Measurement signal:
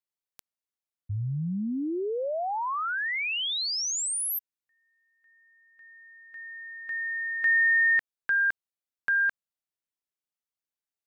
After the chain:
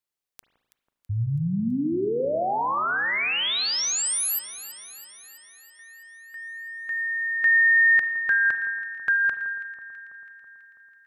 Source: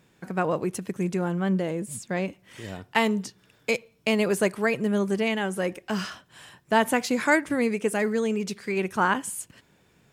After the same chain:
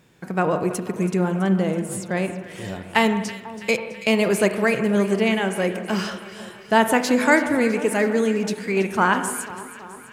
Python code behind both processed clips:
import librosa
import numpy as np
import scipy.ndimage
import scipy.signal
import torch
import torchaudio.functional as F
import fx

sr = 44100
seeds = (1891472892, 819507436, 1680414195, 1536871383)

y = fx.echo_alternate(x, sr, ms=164, hz=1400.0, feedback_pct=78, wet_db=-12.5)
y = fx.rev_spring(y, sr, rt60_s=1.1, pass_ms=(36, 44), chirp_ms=30, drr_db=9.5)
y = y * 10.0 ** (4.0 / 20.0)